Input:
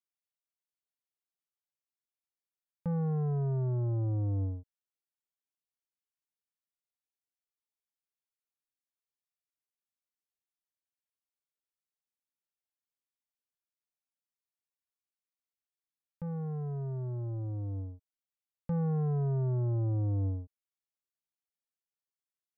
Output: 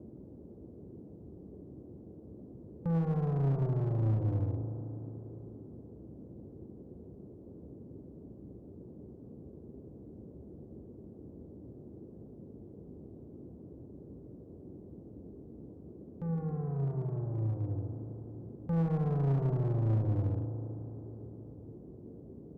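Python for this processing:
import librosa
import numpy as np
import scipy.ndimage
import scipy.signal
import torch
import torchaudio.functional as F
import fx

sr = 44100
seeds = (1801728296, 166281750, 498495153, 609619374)

y = fx.rev_spring(x, sr, rt60_s=3.8, pass_ms=(36,), chirp_ms=75, drr_db=2.5)
y = fx.dmg_noise_band(y, sr, seeds[0], low_hz=56.0, high_hz=400.0, level_db=-49.0)
y = fx.clip_asym(y, sr, top_db=-29.0, bottom_db=-22.0)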